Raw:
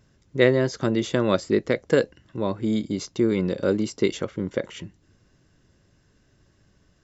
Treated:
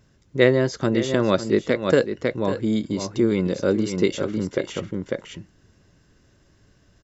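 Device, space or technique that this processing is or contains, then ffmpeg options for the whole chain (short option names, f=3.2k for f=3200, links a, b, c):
ducked delay: -filter_complex "[0:a]asplit=3[a][b][c];[b]adelay=548,volume=-2dB[d];[c]apad=whole_len=334208[e];[d][e]sidechaincompress=threshold=-32dB:ratio=6:attack=29:release=169[f];[a][f]amix=inputs=2:normalize=0,volume=1.5dB"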